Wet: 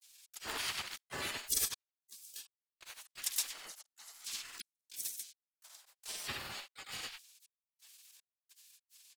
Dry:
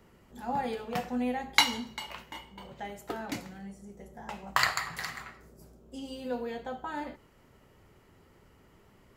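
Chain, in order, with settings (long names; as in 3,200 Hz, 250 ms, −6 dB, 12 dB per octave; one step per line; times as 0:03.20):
gate on every frequency bin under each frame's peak −30 dB weak
high-shelf EQ 3,400 Hz +10 dB
gate pattern "x.xxx.xxx..xx.." 79 BPM −60 dB
granular cloud, spray 64 ms, pitch spread up and down by 0 semitones
pitch-shifted copies added −7 semitones 0 dB, +3 semitones −5 dB
level +8.5 dB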